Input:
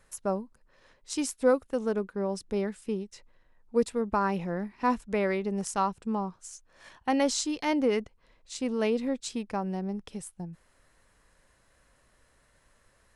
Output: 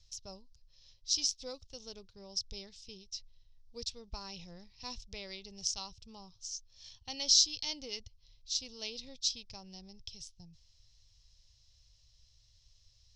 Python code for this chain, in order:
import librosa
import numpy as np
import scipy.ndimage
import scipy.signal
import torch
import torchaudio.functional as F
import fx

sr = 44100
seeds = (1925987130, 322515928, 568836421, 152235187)

y = fx.curve_eq(x, sr, hz=(110.0, 210.0, 830.0, 1600.0, 3300.0, 5600.0, 9500.0), db=(0, -27, -23, -29, 0, 10, -27))
y = y * 10.0 ** (2.5 / 20.0)